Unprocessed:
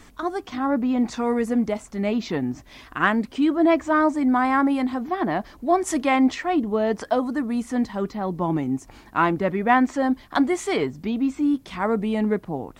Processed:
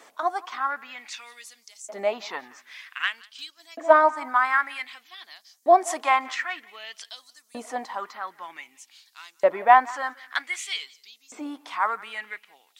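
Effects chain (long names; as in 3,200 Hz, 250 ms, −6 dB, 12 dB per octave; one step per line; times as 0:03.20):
0:03.02–0:04.46: transient designer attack +7 dB, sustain −5 dB
tape delay 175 ms, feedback 38%, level −19 dB, low-pass 4,600 Hz
auto-filter high-pass saw up 0.53 Hz 540–6,700 Hz
level −1.5 dB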